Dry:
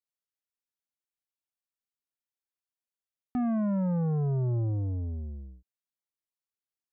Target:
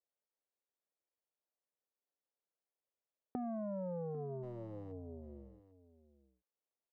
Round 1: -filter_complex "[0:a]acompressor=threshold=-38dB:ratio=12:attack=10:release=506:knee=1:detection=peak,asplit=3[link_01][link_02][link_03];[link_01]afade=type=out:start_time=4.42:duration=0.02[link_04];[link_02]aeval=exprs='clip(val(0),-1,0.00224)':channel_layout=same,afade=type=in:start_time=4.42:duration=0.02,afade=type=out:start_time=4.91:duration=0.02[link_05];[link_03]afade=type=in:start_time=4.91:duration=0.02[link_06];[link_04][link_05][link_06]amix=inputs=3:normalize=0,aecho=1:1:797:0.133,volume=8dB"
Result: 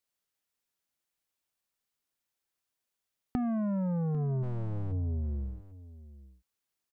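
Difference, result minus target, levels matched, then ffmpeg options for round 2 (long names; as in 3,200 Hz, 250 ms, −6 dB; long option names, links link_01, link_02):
500 Hz band −9.5 dB
-filter_complex "[0:a]acompressor=threshold=-38dB:ratio=12:attack=10:release=506:knee=1:detection=peak,bandpass=frequency=530:width_type=q:width=1.8:csg=0,asplit=3[link_01][link_02][link_03];[link_01]afade=type=out:start_time=4.42:duration=0.02[link_04];[link_02]aeval=exprs='clip(val(0),-1,0.00224)':channel_layout=same,afade=type=in:start_time=4.42:duration=0.02,afade=type=out:start_time=4.91:duration=0.02[link_05];[link_03]afade=type=in:start_time=4.91:duration=0.02[link_06];[link_04][link_05][link_06]amix=inputs=3:normalize=0,aecho=1:1:797:0.133,volume=8dB"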